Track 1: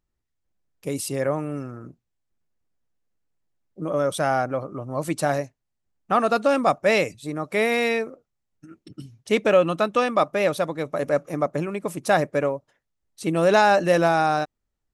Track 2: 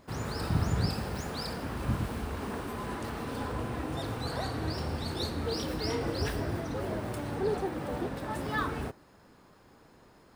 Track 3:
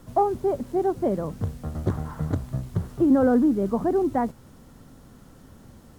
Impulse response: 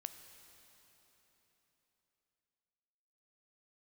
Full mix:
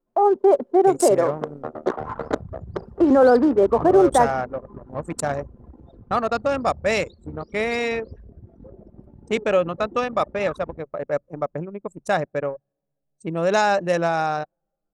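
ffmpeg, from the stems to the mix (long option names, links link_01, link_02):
-filter_complex "[0:a]equalizer=frequency=7200:width=1.9:gain=10,volume=-3dB,asplit=2[link_01][link_02];[link_02]volume=-13dB[link_03];[1:a]alimiter=level_in=2.5dB:limit=-24dB:level=0:latency=1:release=172,volume=-2.5dB,adelay=1900,volume=0.5dB,asplit=2[link_04][link_05];[link_05]volume=-19dB[link_06];[2:a]highpass=frequency=340:width=0.5412,highpass=frequency=340:width=1.3066,alimiter=limit=-19.5dB:level=0:latency=1:release=60,dynaudnorm=framelen=130:gausssize=3:maxgain=9.5dB,volume=2.5dB,asplit=2[link_07][link_08];[link_08]volume=-17.5dB[link_09];[3:a]atrim=start_sample=2205[link_10];[link_03][link_06][link_09]amix=inputs=3:normalize=0[link_11];[link_11][link_10]afir=irnorm=-1:irlink=0[link_12];[link_01][link_04][link_07][link_12]amix=inputs=4:normalize=0,anlmdn=398,equalizer=frequency=300:width_type=o:width=0.37:gain=-4.5"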